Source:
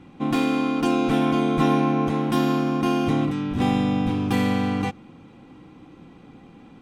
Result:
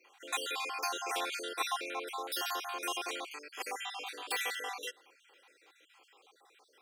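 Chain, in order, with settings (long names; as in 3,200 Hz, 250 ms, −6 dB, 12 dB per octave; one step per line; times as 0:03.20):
time-frequency cells dropped at random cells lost 50%
elliptic high-pass filter 400 Hz, stop band 70 dB
spectral tilt +4.5 dB per octave
level −6.5 dB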